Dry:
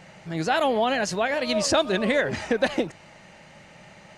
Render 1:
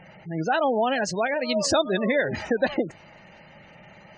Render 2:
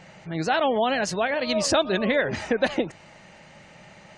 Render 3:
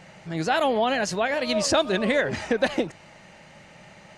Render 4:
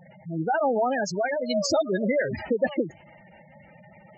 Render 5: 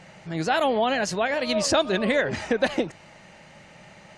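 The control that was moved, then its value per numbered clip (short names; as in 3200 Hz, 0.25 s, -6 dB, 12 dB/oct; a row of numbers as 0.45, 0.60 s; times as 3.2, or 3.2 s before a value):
spectral gate, under each frame's peak: -20, -35, -60, -10, -50 dB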